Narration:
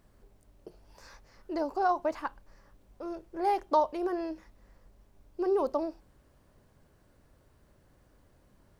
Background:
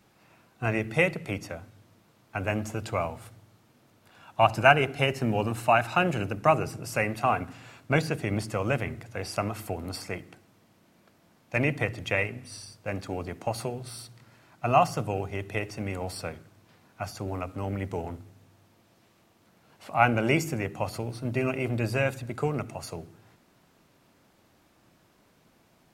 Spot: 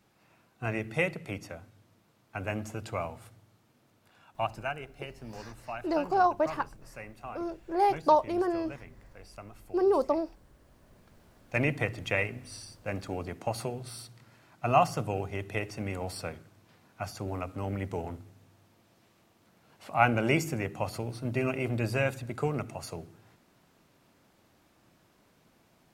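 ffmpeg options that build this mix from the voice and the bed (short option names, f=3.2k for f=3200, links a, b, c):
-filter_complex "[0:a]adelay=4350,volume=3dB[a];[1:a]volume=10.5dB,afade=t=out:st=4.02:d=0.69:silence=0.237137,afade=t=in:st=10.51:d=0.71:silence=0.16788[b];[a][b]amix=inputs=2:normalize=0"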